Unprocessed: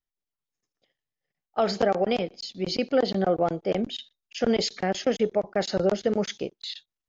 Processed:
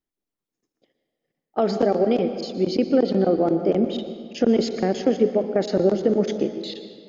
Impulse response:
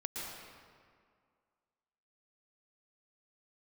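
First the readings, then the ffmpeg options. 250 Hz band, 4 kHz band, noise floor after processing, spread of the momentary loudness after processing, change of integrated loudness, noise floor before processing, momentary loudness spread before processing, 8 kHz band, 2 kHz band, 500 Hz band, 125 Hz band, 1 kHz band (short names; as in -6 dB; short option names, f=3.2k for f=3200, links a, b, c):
+7.5 dB, -3.0 dB, under -85 dBFS, 7 LU, +4.5 dB, under -85 dBFS, 10 LU, n/a, -3.5 dB, +4.5 dB, +4.5 dB, 0.0 dB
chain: -filter_complex "[0:a]equalizer=f=300:t=o:w=1.9:g=14.5,acompressor=threshold=-24dB:ratio=1.5,asplit=2[a][b];[1:a]atrim=start_sample=2205[c];[b][c]afir=irnorm=-1:irlink=0,volume=-6dB[d];[a][d]amix=inputs=2:normalize=0,volume=-3dB"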